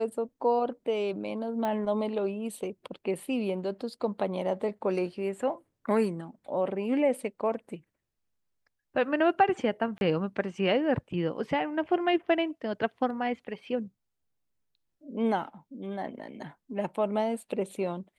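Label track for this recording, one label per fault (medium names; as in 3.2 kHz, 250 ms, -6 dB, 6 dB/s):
1.650000	1.650000	pop -19 dBFS
9.980000	10.010000	dropout 31 ms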